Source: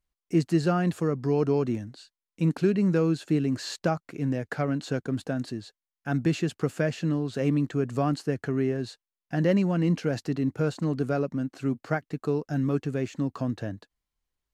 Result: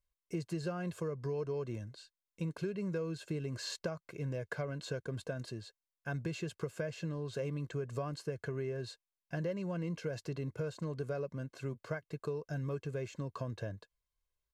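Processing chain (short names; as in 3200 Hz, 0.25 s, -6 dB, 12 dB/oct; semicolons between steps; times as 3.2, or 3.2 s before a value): notch 1800 Hz, Q 18; comb 1.9 ms, depth 67%; compressor 5:1, threshold -27 dBFS, peak gain reduction 10.5 dB; gain -7 dB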